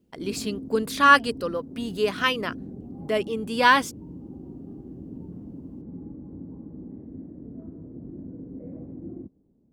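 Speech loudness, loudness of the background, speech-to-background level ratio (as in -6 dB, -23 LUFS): -22.5 LUFS, -40.5 LUFS, 18.0 dB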